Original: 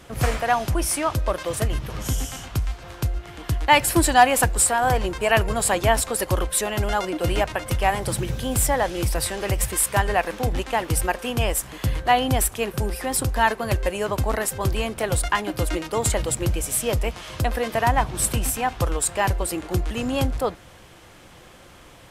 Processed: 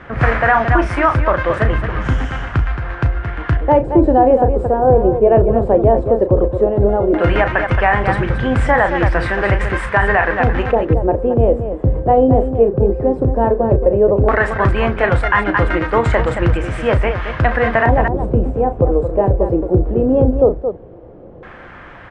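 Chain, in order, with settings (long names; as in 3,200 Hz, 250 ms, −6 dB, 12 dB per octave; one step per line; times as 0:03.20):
Butterworth low-pass 10,000 Hz 48 dB per octave
auto-filter low-pass square 0.14 Hz 490–1,700 Hz
loudspeakers that aren't time-aligned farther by 12 metres −10 dB, 76 metres −9 dB
boost into a limiter +9 dB
level −1 dB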